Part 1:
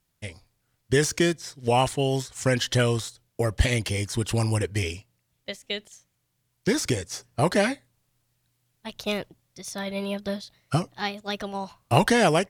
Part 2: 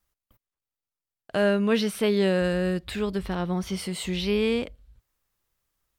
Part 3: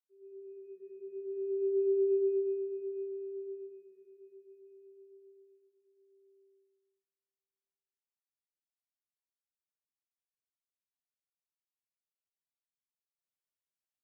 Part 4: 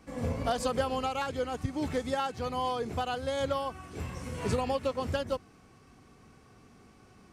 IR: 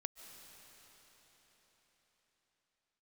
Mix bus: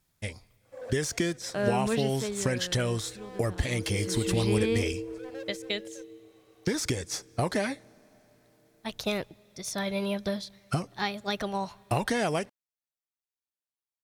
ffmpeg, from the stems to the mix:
-filter_complex "[0:a]acompressor=threshold=-26dB:ratio=6,volume=0.5dB,asplit=3[a][b][c];[b]volume=-17.5dB[d];[1:a]adelay=200,volume=5.5dB,afade=t=out:st=1.99:d=0.5:silence=0.316228,afade=t=in:st=3.74:d=0.7:silence=0.251189[e];[2:a]aeval=exprs='val(0)*sin(2*PI*65*n/s)':c=same,adelay=2500,volume=-0.5dB[f];[3:a]highpass=f=530:t=q:w=4.9,asoftclip=type=hard:threshold=-27.5dB,adelay=650,volume=-9dB[g];[c]apad=whole_len=351680[h];[g][h]sidechaincompress=threshold=-46dB:ratio=8:attack=22:release=487[i];[4:a]atrim=start_sample=2205[j];[d][j]afir=irnorm=-1:irlink=0[k];[a][e][f][i][k]amix=inputs=5:normalize=0,bandreject=f=2.9k:w=16"

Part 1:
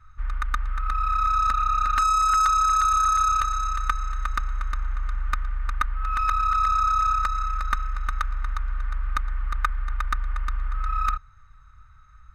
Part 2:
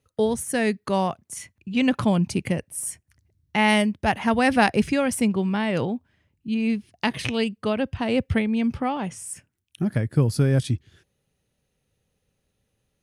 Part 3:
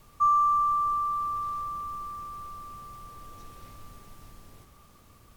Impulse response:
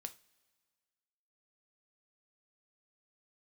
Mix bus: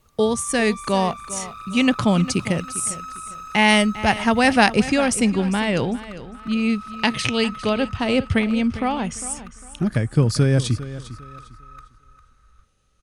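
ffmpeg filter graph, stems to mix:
-filter_complex "[0:a]adelay=300,volume=-5.5dB,asplit=2[a][b];[b]volume=-13dB[c];[1:a]lowpass=f=8.6k:w=0.5412,lowpass=f=8.6k:w=1.3066,highshelf=f=3.6k:g=9,volume=2.5dB,asplit=2[d][e];[e]volume=-15dB[f];[2:a]dynaudnorm=f=150:g=9:m=11dB,volume=-6.5dB[g];[a][g]amix=inputs=2:normalize=0,asoftclip=type=hard:threshold=-24.5dB,acompressor=threshold=-38dB:ratio=6,volume=0dB[h];[c][f]amix=inputs=2:normalize=0,aecho=0:1:402|804|1206|1608:1|0.28|0.0784|0.022[i];[d][h][i]amix=inputs=3:normalize=0"

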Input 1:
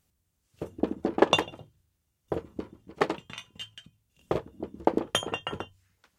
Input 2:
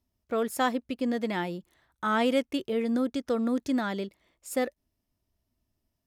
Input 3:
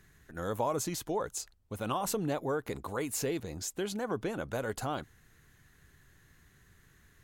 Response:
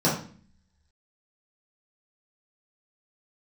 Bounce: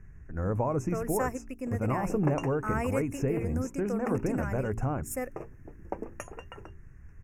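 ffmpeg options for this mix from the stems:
-filter_complex "[0:a]flanger=delay=1.6:depth=9.4:regen=60:speed=0.37:shape=triangular,adelay=1050,volume=-7.5dB[a];[1:a]aemphasis=mode=production:type=cd,adelay=600,volume=-6.5dB[b];[2:a]aemphasis=mode=reproduction:type=riaa,volume=-0.5dB[c];[a][b][c]amix=inputs=3:normalize=0,asuperstop=centerf=3800:order=12:qfactor=1.5,bandreject=f=56.75:t=h:w=4,bandreject=f=113.5:t=h:w=4,bandreject=f=170.25:t=h:w=4,bandreject=f=227:t=h:w=4,bandreject=f=283.75:t=h:w=4,bandreject=f=340.5:t=h:w=4,bandreject=f=397.25:t=h:w=4"

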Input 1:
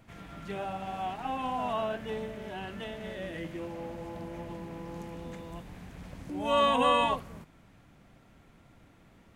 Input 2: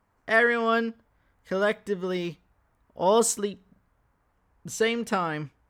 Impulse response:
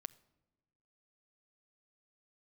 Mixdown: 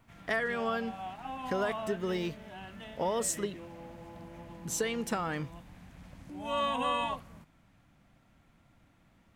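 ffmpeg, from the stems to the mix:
-filter_complex "[0:a]equalizer=f=420:w=2.7:g=-7.5,volume=-5.5dB[a];[1:a]acompressor=threshold=-28dB:ratio=6,crystalizer=i=0.5:c=0,volume=-1dB[b];[a][b]amix=inputs=2:normalize=0"

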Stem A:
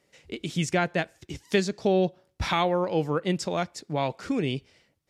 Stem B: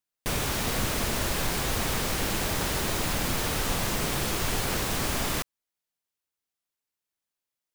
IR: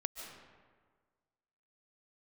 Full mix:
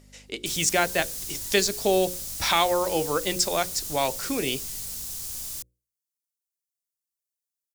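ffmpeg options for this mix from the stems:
-filter_complex "[0:a]aeval=exprs='val(0)+0.00631*(sin(2*PI*50*n/s)+sin(2*PI*2*50*n/s)/2+sin(2*PI*3*50*n/s)/3+sin(2*PI*4*50*n/s)/4+sin(2*PI*5*50*n/s)/5)':c=same,volume=3dB[a];[1:a]bass=f=250:g=15,treble=f=4k:g=7,acrossover=split=130|3000[b][c][d];[c]acompressor=threshold=-37dB:ratio=2[e];[b][e][d]amix=inputs=3:normalize=0,adelay=200,volume=-17.5dB[f];[a][f]amix=inputs=2:normalize=0,bass=f=250:g=-12,treble=f=4k:g=11,bandreject=f=60:t=h:w=6,bandreject=f=120:t=h:w=6,bandreject=f=180:t=h:w=6,bandreject=f=240:t=h:w=6,bandreject=f=300:t=h:w=6,bandreject=f=360:t=h:w=6,bandreject=f=420:t=h:w=6,bandreject=f=480:t=h:w=6,bandreject=f=540:t=h:w=6"

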